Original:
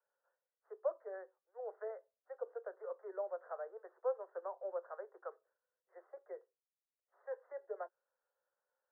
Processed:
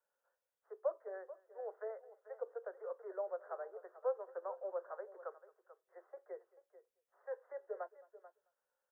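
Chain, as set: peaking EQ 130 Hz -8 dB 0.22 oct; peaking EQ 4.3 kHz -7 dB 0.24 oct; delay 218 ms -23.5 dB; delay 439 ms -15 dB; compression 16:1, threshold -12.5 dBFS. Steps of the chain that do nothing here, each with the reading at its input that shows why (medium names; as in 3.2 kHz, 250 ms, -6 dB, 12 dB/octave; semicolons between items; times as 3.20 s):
peaking EQ 130 Hz: input has nothing below 340 Hz; peaking EQ 4.3 kHz: input has nothing above 1.6 kHz; compression, threshold -12.5 dBFS: peak at its input -25.5 dBFS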